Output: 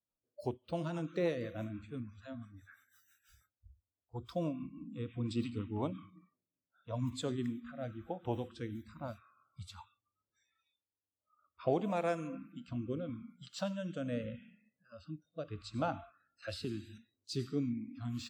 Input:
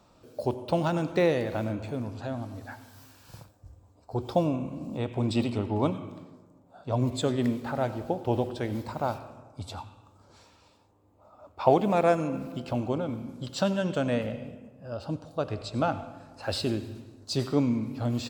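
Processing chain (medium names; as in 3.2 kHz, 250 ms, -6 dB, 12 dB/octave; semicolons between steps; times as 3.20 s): rotary cabinet horn 6 Hz, later 0.8 Hz, at 5.67 s; spectral noise reduction 29 dB; 16.42–16.98 s: three bands compressed up and down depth 70%; trim -8 dB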